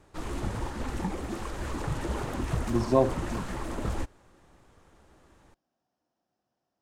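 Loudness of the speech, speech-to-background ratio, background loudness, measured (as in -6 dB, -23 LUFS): -27.0 LUFS, 7.5 dB, -34.5 LUFS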